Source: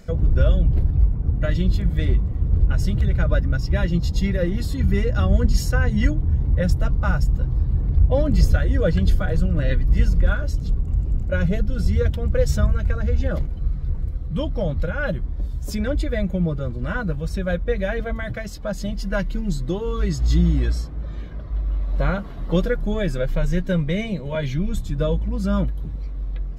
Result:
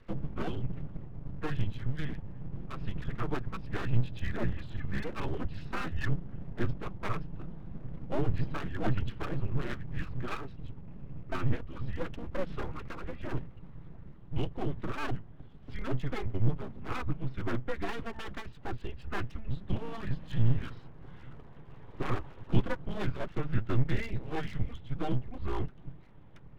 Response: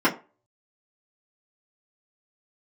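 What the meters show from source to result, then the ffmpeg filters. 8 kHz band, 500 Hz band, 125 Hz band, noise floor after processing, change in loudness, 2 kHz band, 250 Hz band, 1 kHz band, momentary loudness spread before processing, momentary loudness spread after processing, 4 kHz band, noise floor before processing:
n/a, -14.0 dB, -13.0 dB, -49 dBFS, -14.0 dB, -11.0 dB, -12.5 dB, -6.0 dB, 9 LU, 15 LU, -11.5 dB, -30 dBFS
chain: -af "highpass=f=160:t=q:w=0.5412,highpass=f=160:t=q:w=1.307,lowpass=f=3.4k:t=q:w=0.5176,lowpass=f=3.4k:t=q:w=0.7071,lowpass=f=3.4k:t=q:w=1.932,afreqshift=-230,equalizer=f=64:w=2.5:g=13,aeval=exprs='abs(val(0))':c=same,volume=-7dB"

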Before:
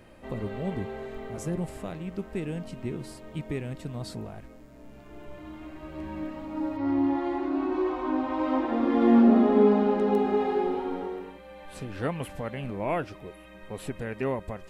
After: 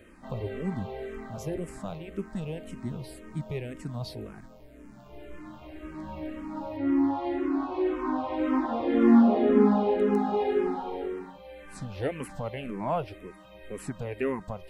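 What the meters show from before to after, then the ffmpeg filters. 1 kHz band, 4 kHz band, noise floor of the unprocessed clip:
-1.0 dB, n/a, -49 dBFS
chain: -filter_complex "[0:a]asplit=2[a][b];[b]afreqshift=-1.9[c];[a][c]amix=inputs=2:normalize=1,volume=2dB"

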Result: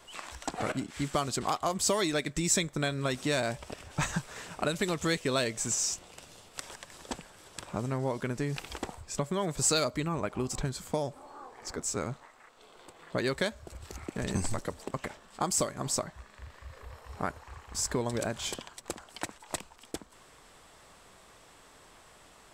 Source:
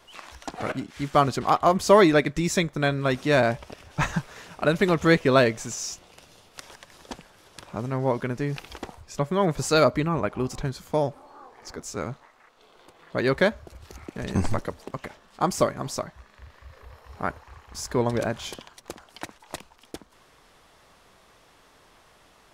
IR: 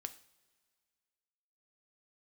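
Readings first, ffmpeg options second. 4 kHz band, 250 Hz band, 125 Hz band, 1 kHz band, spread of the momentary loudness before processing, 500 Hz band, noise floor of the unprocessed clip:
-1.5 dB, -8.0 dB, -7.0 dB, -9.0 dB, 21 LU, -10.0 dB, -57 dBFS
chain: -filter_complex "[0:a]equalizer=f=7.9k:t=o:w=0.23:g=11,acrossover=split=3200[a][b];[a]acompressor=threshold=-28dB:ratio=5[c];[c][b]amix=inputs=2:normalize=0"

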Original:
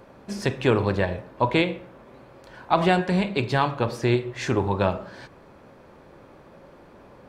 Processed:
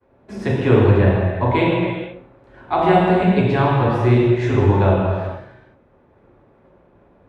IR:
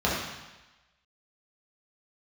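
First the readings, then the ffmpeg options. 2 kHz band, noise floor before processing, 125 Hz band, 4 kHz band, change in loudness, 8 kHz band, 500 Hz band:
+3.0 dB, -51 dBFS, +10.5 dB, -0.5 dB, +7.0 dB, n/a, +7.0 dB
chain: -filter_complex "[0:a]agate=range=-33dB:threshold=-40dB:ratio=3:detection=peak[a];[1:a]atrim=start_sample=2205,afade=t=out:st=0.32:d=0.01,atrim=end_sample=14553,asetrate=24255,aresample=44100[b];[a][b]afir=irnorm=-1:irlink=0,volume=-13.5dB"

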